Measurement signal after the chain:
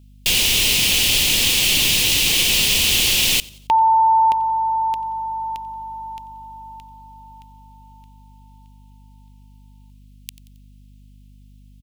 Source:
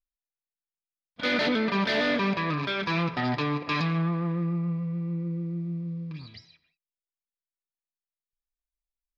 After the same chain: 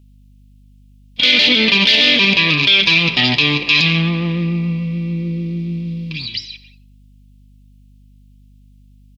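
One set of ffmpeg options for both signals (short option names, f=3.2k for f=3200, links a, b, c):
-filter_complex "[0:a]highshelf=f=2k:t=q:w=3:g=12,aeval=exprs='val(0)+0.00178*(sin(2*PI*50*n/s)+sin(2*PI*2*50*n/s)/2+sin(2*PI*3*50*n/s)/3+sin(2*PI*4*50*n/s)/4+sin(2*PI*5*50*n/s)/5)':c=same,equalizer=f=650:t=o:w=0.47:g=-3.5,asplit=2[a][b];[b]asplit=3[c][d][e];[c]adelay=90,afreqshift=58,volume=-23.5dB[f];[d]adelay=180,afreqshift=116,volume=-30.2dB[g];[e]adelay=270,afreqshift=174,volume=-37dB[h];[f][g][h]amix=inputs=3:normalize=0[i];[a][i]amix=inputs=2:normalize=0,alimiter=level_in=11.5dB:limit=-1dB:release=50:level=0:latency=1,volume=-2dB"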